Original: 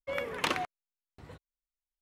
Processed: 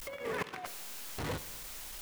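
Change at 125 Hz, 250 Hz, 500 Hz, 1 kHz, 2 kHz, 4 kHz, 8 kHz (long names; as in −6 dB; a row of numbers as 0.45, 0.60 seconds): +5.5, −1.0, −2.0, −5.5, −4.5, −5.5, +5.0 decibels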